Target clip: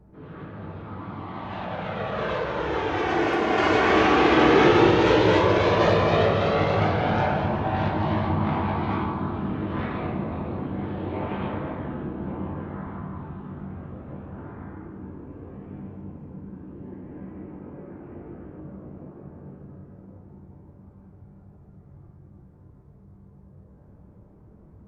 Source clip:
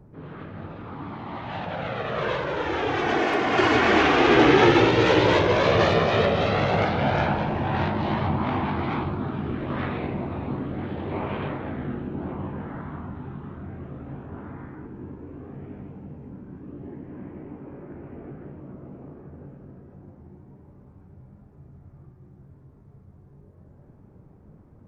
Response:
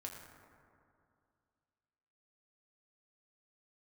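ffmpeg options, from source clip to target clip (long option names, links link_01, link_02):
-filter_complex "[1:a]atrim=start_sample=2205,afade=type=out:start_time=0.4:duration=0.01,atrim=end_sample=18081,asetrate=30870,aresample=44100[link_01];[0:a][link_01]afir=irnorm=-1:irlink=0"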